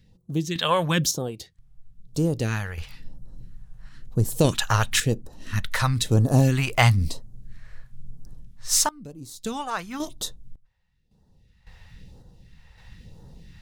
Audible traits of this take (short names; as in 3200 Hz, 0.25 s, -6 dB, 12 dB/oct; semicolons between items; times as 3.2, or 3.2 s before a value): phasing stages 2, 1 Hz, lowest notch 260–2200 Hz; random-step tremolo 1.8 Hz, depth 95%